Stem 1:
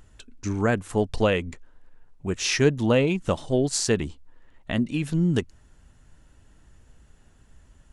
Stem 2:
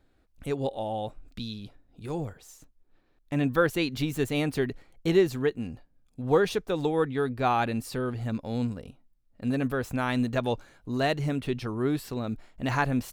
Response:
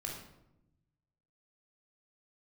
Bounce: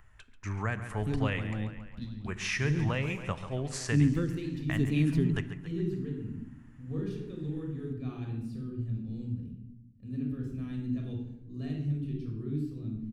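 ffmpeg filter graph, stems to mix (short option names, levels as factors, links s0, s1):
-filter_complex "[0:a]equalizer=f=125:t=o:w=1:g=3,equalizer=f=250:t=o:w=1:g=-7,equalizer=f=500:t=o:w=1:g=-4,equalizer=f=1000:t=o:w=1:g=6,equalizer=f=2000:t=o:w=1:g=10,equalizer=f=4000:t=o:w=1:g=-6,equalizer=f=8000:t=o:w=1:g=-5,volume=0.355,asplit=4[s0][s1][s2][s3];[s1]volume=0.282[s4];[s2]volume=0.237[s5];[1:a]firequalizer=gain_entry='entry(290,0);entry(590,-23);entry(2700,-12);entry(10000,-15);entry(15000,-22)':delay=0.05:min_phase=1,adelay=600,volume=1.19,asplit=2[s6][s7];[s7]volume=0.376[s8];[s3]apad=whole_len=609631[s9];[s6][s9]sidechaingate=range=0.0224:threshold=0.00224:ratio=16:detection=peak[s10];[2:a]atrim=start_sample=2205[s11];[s4][s8]amix=inputs=2:normalize=0[s12];[s12][s11]afir=irnorm=-1:irlink=0[s13];[s5]aecho=0:1:138|276|414|552|690|828|966|1104|1242:1|0.57|0.325|0.185|0.106|0.0602|0.0343|0.0195|0.0111[s14];[s0][s10][s13][s14]amix=inputs=4:normalize=0,acrossover=split=320|3000[s15][s16][s17];[s16]acompressor=threshold=0.0141:ratio=2.5[s18];[s15][s18][s17]amix=inputs=3:normalize=0"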